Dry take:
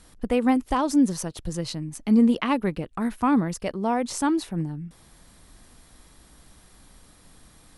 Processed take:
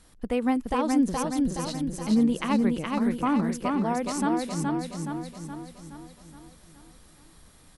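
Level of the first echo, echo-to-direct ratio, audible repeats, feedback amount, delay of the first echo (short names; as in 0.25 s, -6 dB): -3.0 dB, -1.5 dB, 6, 53%, 0.421 s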